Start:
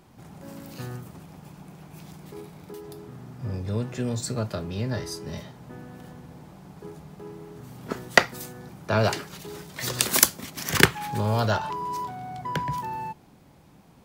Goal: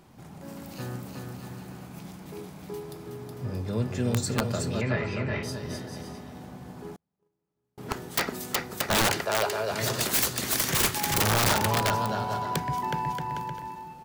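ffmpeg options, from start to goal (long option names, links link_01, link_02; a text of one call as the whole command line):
ffmpeg -i in.wav -filter_complex "[0:a]bandreject=frequency=50:width_type=h:width=6,bandreject=frequency=100:width_type=h:width=6,aecho=1:1:370|629|810.3|937.2|1026:0.631|0.398|0.251|0.158|0.1,aeval=exprs='(mod(6.68*val(0)+1,2)-1)/6.68':channel_layout=same,asettb=1/sr,asplit=3[link_01][link_02][link_03];[link_01]atrim=end=4.814[link_04];[link_02]atrim=start=4.81:end=5.43,asetpts=PTS-STARTPTS,afade=type=in:duration=0.004:curve=qsin,afade=type=out:start_time=0.616:duration=0.004:curve=qsin,lowpass=frequency=2300:width_type=q:width=4.7[link_05];[link_03]atrim=start=5.426[link_06];[link_04][link_05]acrossfade=duration=0.004:curve1=hsin:curve2=qsin[link_07];[link_07][link_06]acrossfade=duration=0.004:curve1=qsin:curve2=hsin,asettb=1/sr,asplit=3[link_08][link_09][link_10];[link_08]atrim=end=6.964[link_11];[link_09]atrim=start=6.96:end=7.78,asetpts=PTS-STARTPTS,afade=type=in:duration=0.004:curve=qsin,afade=type=out:start_time=0.816:duration=0.004:curve=qsin,agate=range=-41dB:threshold=-31dB:ratio=16:detection=peak[link_12];[link_10]atrim=start=7.776[link_13];[link_11][link_12]acrossfade=duration=0.004:curve1=hsin:curve2=qsin[link_14];[link_14][link_13]acrossfade=duration=0.004:curve1=qsin:curve2=hsin,asettb=1/sr,asplit=3[link_15][link_16][link_17];[link_15]atrim=end=9.254[link_18];[link_16]atrim=start=9.25:end=9.71,asetpts=PTS-STARTPTS,afade=type=in:duration=0.004:curve=qsin,afade=type=out:start_time=0.456:duration=0.004:curve=qsin,lowshelf=frequency=310:width_type=q:width=1.5:gain=-10[link_19];[link_17]atrim=start=9.706[link_20];[link_18][link_19]acrossfade=duration=0.004:curve1=hsin:curve2=qsin[link_21];[link_21][link_20]acrossfade=duration=0.004:curve1=qsin:curve2=hsin" out.wav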